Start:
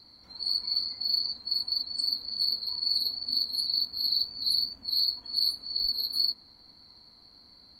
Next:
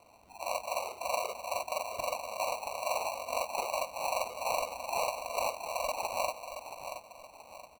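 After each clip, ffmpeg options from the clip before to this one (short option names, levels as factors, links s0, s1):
-af "aecho=1:1:676|1352|2028|2704:0.355|0.135|0.0512|0.0195,acrusher=samples=26:mix=1:aa=0.000001,volume=0.531"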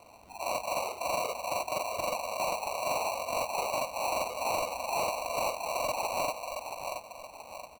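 -af "asoftclip=type=tanh:threshold=0.0266,volume=1.88"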